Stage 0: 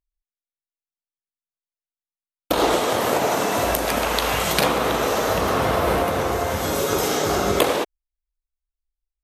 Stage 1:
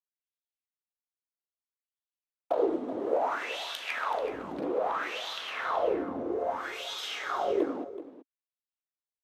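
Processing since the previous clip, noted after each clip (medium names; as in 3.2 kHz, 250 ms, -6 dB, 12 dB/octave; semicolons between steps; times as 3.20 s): peaking EQ 160 Hz -5 dB 1.2 oct; wah-wah 0.61 Hz 260–3600 Hz, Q 4.7; delay 378 ms -14 dB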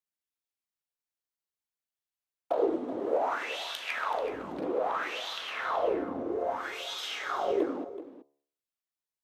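de-hum 71.38 Hz, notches 17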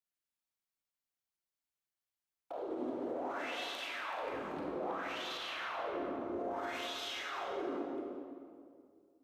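peaking EQ 460 Hz -5 dB 0.25 oct; peak limiter -31 dBFS, peak gain reduction 13.5 dB; reverberation RT60 2.2 s, pre-delay 28 ms, DRR 0 dB; trim -4 dB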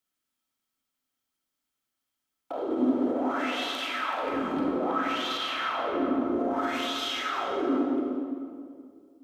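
small resonant body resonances 260/1300/3200 Hz, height 12 dB, ringing for 60 ms; trim +8 dB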